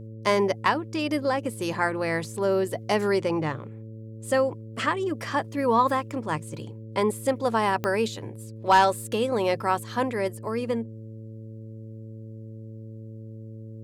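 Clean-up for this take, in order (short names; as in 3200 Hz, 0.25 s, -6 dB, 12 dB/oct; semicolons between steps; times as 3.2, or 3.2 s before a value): clip repair -10 dBFS; de-click; de-hum 110.6 Hz, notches 5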